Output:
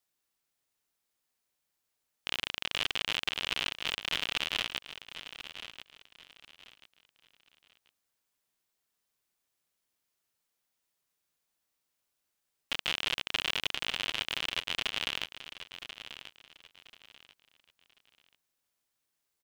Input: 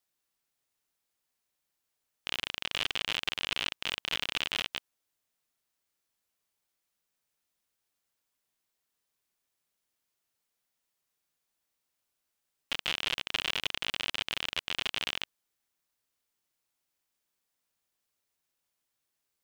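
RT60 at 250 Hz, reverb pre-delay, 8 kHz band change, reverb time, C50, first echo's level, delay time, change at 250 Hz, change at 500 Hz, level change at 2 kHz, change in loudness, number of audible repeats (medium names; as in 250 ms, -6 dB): no reverb, no reverb, +0.5 dB, no reverb, no reverb, -12.0 dB, 1037 ms, 0.0 dB, +0.5 dB, +0.5 dB, -1.0 dB, 3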